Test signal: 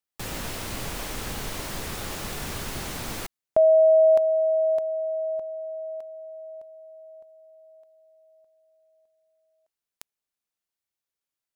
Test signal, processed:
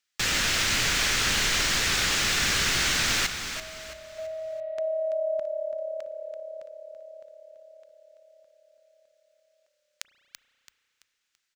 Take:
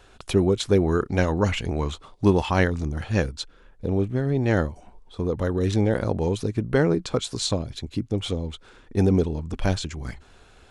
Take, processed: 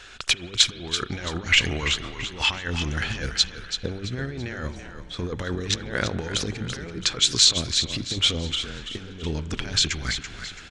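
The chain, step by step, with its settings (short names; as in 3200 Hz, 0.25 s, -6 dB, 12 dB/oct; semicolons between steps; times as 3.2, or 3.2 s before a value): negative-ratio compressor -26 dBFS, ratio -0.5; band shelf 3200 Hz +13 dB 2.8 oct; on a send: frequency-shifting echo 0.334 s, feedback 38%, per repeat -35 Hz, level -9 dB; on the sum: spring tank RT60 3 s, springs 33 ms, chirp 50 ms, DRR 16 dB; gain -4 dB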